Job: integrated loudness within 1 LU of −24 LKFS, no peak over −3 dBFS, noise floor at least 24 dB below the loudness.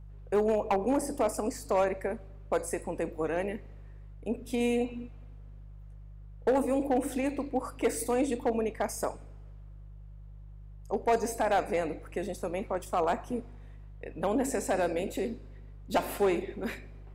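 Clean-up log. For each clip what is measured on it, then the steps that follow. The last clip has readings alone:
share of clipped samples 0.7%; peaks flattened at −19.5 dBFS; mains hum 50 Hz; hum harmonics up to 150 Hz; level of the hum −44 dBFS; integrated loudness −31.0 LKFS; sample peak −19.5 dBFS; target loudness −24.0 LKFS
→ clipped peaks rebuilt −19.5 dBFS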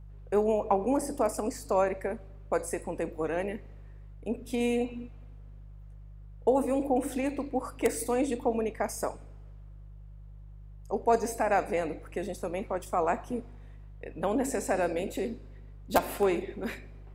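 share of clipped samples 0.0%; mains hum 50 Hz; hum harmonics up to 150 Hz; level of the hum −44 dBFS
→ hum removal 50 Hz, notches 3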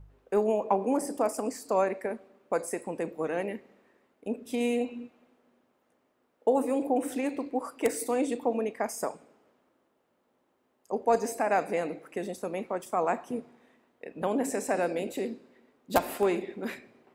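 mains hum none found; integrated loudness −30.5 LKFS; sample peak −10.5 dBFS; target loudness −24.0 LKFS
→ level +6.5 dB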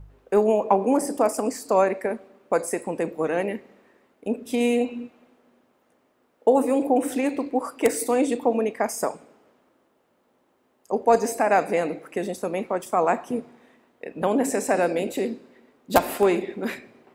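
integrated loudness −24.0 LKFS; sample peak −4.0 dBFS; background noise floor −66 dBFS

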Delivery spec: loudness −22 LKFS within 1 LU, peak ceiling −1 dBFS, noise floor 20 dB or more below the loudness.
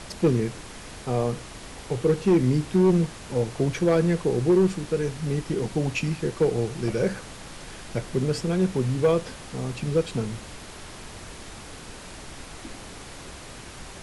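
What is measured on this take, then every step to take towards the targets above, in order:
share of clipped samples 0.5%; peaks flattened at −13.5 dBFS; background noise floor −42 dBFS; target noise floor −45 dBFS; integrated loudness −25.0 LKFS; sample peak −13.5 dBFS; target loudness −22.0 LKFS
→ clipped peaks rebuilt −13.5 dBFS
noise reduction from a noise print 6 dB
level +3 dB

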